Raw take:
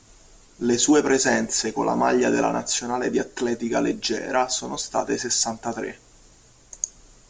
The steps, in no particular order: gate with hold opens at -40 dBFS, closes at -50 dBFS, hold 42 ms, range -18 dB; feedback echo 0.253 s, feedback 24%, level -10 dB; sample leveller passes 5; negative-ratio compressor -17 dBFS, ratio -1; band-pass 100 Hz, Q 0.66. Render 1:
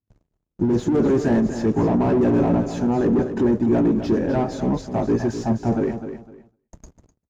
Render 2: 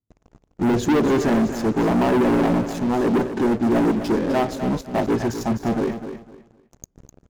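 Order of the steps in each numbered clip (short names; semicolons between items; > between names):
sample leveller > band-pass > negative-ratio compressor > feedback echo > gate with hold; gate with hold > band-pass > negative-ratio compressor > sample leveller > feedback echo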